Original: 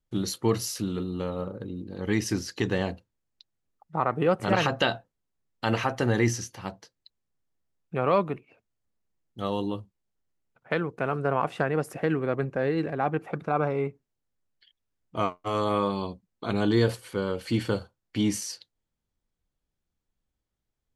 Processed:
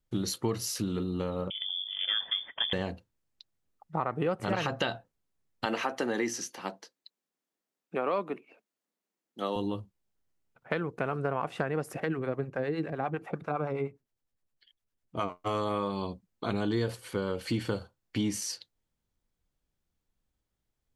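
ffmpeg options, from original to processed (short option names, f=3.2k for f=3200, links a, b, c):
-filter_complex "[0:a]asettb=1/sr,asplit=3[a][b][c];[a]atrim=end=1.504[d];[b]atrim=start=1.5:end=2.73,asetpts=PTS-STARTPTS,afade=t=in:d=0.004:c=qsin,afade=t=out:st=1.226:d=0.004:c=qsin,lowpass=f=3.1k:t=q:w=0.5098,lowpass=f=3.1k:t=q:w=0.6013,lowpass=f=3.1k:t=q:w=0.9,lowpass=f=3.1k:t=q:w=2.563,afreqshift=-3600[e];[c]atrim=start=2.726[f];[d][e]acrossfade=d=0.004:c1=hsin:c2=qsin[g];[g][f]acrossfade=d=0.004:c1=qsin:c2=hsin,asettb=1/sr,asplit=3[h][i][j];[h]atrim=end=5.654[k];[i]atrim=start=5.65:end=9.56,asetpts=PTS-STARTPTS,afade=t=in:d=0.004:c=qsin,afade=t=out:st=3.906:d=0.004:c=qsin,highpass=f=220:w=0.5412,highpass=f=220:w=1.3066[l];[j]atrim=start=9.556[m];[k][l]acrossfade=d=0.004:c1=hsin:c2=qsin[n];[n][m]acrossfade=d=0.004:c1=qsin:c2=hsin,asettb=1/sr,asplit=3[o][p][q];[o]atrim=end=12.004[r];[p]atrim=start=12:end=15.3,asetpts=PTS-STARTPTS,afade=t=in:d=0.004:c=qsin,afade=t=out:st=3.296:d=0.004:c=qsin,acrossover=split=620[s][t];[s]aeval=exprs='val(0)*(1-0.7/2+0.7/2*cos(2*PI*9.8*n/s))':c=same[u];[t]aeval=exprs='val(0)*(1-0.7/2-0.7/2*cos(2*PI*9.8*n/s))':c=same[v];[u][v]amix=inputs=2:normalize=0[w];[q]atrim=start=15.296[x];[r][w]acrossfade=d=0.004:c1=hsin:c2=qsin[y];[y][x]acrossfade=d=0.004:c1=qsin:c2=hsin,acompressor=threshold=-29dB:ratio=3,volume=1dB"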